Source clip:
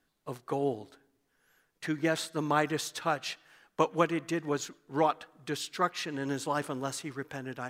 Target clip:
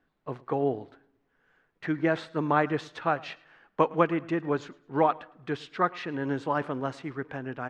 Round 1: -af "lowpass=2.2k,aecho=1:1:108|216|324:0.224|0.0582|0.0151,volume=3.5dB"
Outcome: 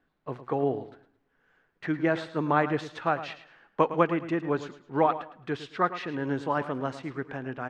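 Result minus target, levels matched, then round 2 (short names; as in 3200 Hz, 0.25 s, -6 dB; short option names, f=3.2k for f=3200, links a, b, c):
echo-to-direct +10 dB
-af "lowpass=2.2k,aecho=1:1:108|216:0.0708|0.0184,volume=3.5dB"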